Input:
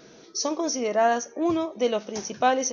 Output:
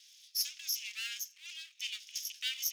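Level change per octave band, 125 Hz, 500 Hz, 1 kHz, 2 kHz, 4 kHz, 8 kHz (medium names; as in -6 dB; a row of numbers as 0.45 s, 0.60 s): under -40 dB, under -40 dB, under -40 dB, -10.0 dB, -1.0 dB, no reading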